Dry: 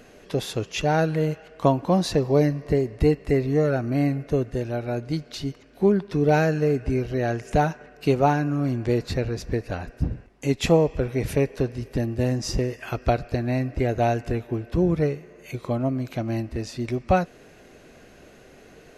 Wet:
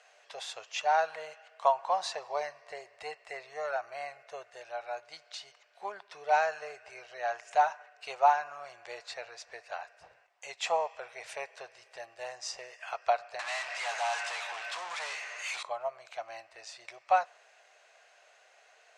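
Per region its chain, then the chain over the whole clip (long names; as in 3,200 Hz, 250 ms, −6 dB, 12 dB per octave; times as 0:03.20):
0:13.39–0:15.63: high-pass filter 41 Hz + guitar amp tone stack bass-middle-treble 5-5-5 + mid-hump overdrive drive 42 dB, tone 6,800 Hz, clips at −21.5 dBFS
whole clip: elliptic band-pass filter 680–8,500 Hz, stop band 40 dB; dynamic equaliser 970 Hz, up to +8 dB, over −41 dBFS, Q 1.4; level −6 dB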